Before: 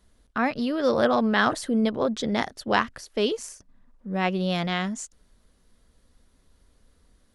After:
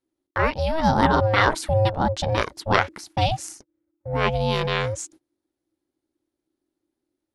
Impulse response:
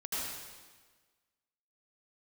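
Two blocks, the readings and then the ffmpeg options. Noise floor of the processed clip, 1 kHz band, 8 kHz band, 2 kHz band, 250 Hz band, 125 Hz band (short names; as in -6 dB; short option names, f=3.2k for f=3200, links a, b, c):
-85 dBFS, +5.5 dB, +3.0 dB, +3.0 dB, -3.0 dB, +10.5 dB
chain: -af "agate=range=-24dB:threshold=-49dB:ratio=16:detection=peak,aeval=exprs='val(0)*sin(2*PI*320*n/s)':c=same,volume=6dB"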